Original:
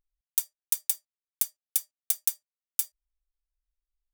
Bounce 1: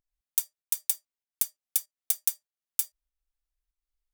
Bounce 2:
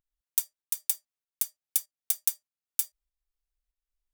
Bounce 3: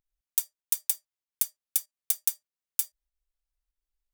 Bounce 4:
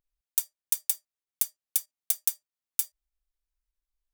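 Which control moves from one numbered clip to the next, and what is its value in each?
volume shaper, release: 248 ms, 438 ms, 151 ms, 80 ms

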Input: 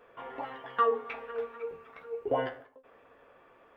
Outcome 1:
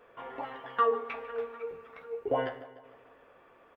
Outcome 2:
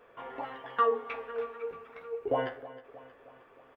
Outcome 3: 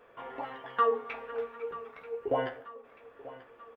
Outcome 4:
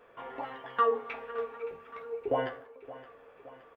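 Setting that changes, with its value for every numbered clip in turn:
feedback delay, time: 149 ms, 314 ms, 936 ms, 569 ms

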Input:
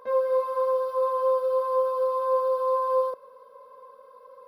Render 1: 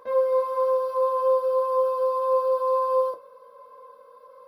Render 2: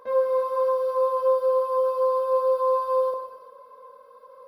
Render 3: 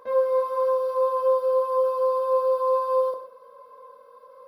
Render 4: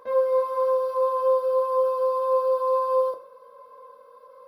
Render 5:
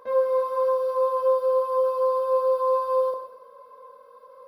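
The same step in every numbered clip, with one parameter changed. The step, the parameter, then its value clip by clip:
gated-style reverb, gate: 90 ms, 490 ms, 210 ms, 130 ms, 330 ms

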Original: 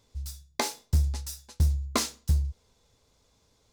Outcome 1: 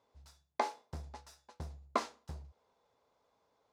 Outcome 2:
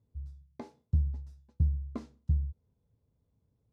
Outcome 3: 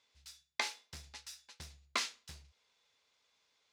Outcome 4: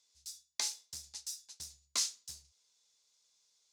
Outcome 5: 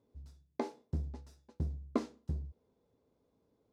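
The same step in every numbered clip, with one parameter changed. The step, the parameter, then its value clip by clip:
band-pass filter, frequency: 830 Hz, 120 Hz, 2.4 kHz, 6.1 kHz, 310 Hz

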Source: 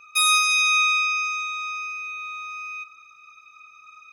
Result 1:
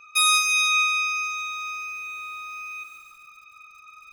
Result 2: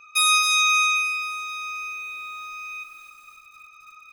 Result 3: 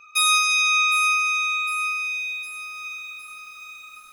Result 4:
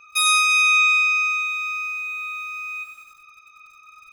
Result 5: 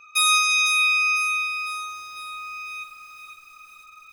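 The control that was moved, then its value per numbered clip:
bit-crushed delay, time: 143 ms, 265 ms, 757 ms, 96 ms, 501 ms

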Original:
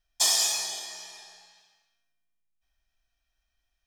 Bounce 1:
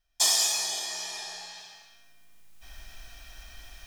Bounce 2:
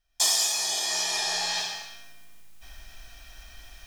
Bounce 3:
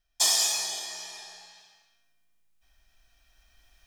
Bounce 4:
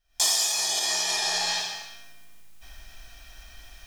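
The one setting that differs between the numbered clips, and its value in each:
recorder AGC, rising by: 14 dB/s, 34 dB/s, 5.4 dB/s, 87 dB/s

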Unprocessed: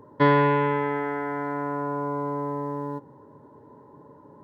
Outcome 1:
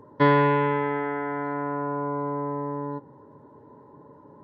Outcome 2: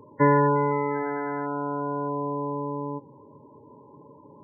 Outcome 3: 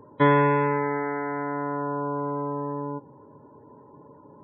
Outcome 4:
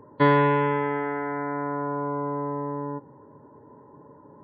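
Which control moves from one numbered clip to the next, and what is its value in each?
spectral gate, under each frame's peak: -55 dB, -15 dB, -30 dB, -40 dB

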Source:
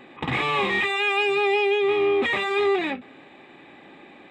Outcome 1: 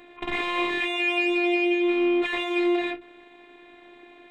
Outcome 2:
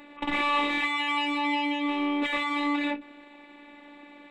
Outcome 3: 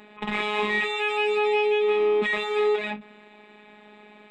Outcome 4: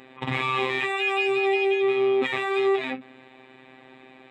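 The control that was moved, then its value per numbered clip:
robot voice, frequency: 350 Hz, 290 Hz, 210 Hz, 130 Hz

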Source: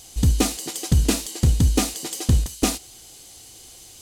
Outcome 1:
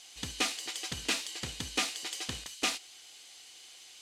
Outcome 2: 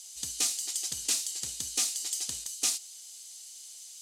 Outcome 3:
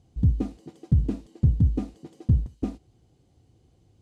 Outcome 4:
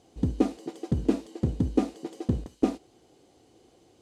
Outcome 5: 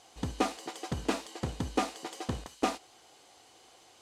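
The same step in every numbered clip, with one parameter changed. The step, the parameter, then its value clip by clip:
band-pass filter, frequency: 2.4 kHz, 6.8 kHz, 120 Hz, 350 Hz, 940 Hz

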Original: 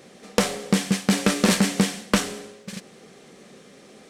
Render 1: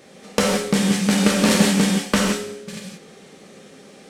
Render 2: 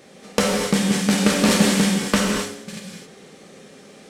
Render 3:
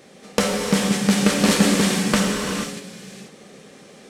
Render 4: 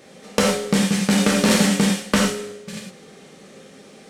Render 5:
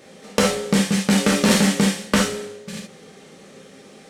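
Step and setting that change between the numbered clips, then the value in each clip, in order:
gated-style reverb, gate: 200 ms, 290 ms, 510 ms, 130 ms, 90 ms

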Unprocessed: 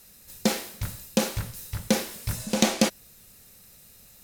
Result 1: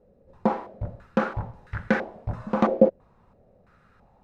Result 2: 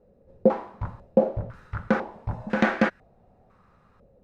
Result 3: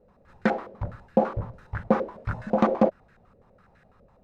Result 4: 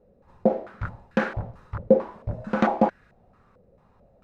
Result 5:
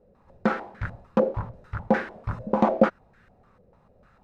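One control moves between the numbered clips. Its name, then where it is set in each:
step-sequenced low-pass, rate: 3 Hz, 2 Hz, 12 Hz, 4.5 Hz, 6.7 Hz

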